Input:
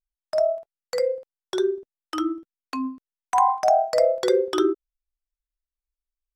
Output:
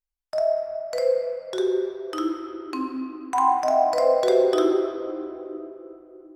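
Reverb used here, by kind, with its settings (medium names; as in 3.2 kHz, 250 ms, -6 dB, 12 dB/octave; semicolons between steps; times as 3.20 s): simulated room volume 160 m³, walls hard, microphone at 0.39 m; trim -3 dB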